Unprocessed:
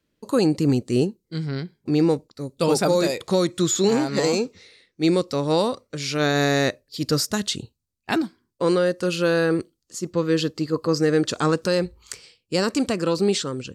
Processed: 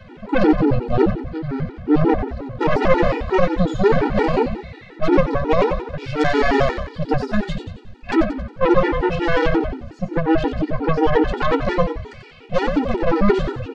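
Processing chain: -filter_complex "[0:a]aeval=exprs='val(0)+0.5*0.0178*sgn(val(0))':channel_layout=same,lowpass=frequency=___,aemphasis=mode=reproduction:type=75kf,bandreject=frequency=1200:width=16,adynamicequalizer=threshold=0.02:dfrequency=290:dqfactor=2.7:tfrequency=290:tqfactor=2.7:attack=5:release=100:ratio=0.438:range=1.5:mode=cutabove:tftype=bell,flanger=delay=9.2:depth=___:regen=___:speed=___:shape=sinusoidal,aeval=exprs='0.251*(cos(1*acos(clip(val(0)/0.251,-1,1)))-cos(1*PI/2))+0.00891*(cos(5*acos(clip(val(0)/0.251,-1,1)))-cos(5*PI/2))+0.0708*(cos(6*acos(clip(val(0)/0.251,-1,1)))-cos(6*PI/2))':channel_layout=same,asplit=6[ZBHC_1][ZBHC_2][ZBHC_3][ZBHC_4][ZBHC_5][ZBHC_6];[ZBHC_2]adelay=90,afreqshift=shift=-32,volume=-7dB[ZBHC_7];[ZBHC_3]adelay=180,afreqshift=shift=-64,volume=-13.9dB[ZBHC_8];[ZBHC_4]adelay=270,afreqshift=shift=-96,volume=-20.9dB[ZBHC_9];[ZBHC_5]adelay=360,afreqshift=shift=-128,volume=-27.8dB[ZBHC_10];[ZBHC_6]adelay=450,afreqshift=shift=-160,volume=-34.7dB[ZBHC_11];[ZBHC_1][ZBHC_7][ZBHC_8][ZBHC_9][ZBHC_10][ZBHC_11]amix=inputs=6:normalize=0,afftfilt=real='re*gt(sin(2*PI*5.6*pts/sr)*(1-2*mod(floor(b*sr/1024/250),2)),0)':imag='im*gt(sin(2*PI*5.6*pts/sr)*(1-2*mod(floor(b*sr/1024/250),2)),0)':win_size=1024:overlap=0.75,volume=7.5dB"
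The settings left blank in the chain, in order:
2400, 6.3, 21, 1.4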